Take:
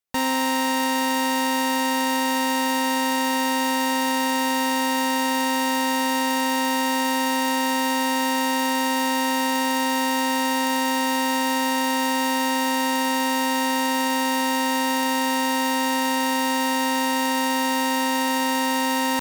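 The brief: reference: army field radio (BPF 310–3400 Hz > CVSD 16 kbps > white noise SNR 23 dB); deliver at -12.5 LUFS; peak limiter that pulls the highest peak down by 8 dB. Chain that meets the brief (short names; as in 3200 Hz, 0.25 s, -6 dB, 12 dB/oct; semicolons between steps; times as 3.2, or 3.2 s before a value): limiter -22.5 dBFS; BPF 310–3400 Hz; CVSD 16 kbps; white noise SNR 23 dB; gain +20.5 dB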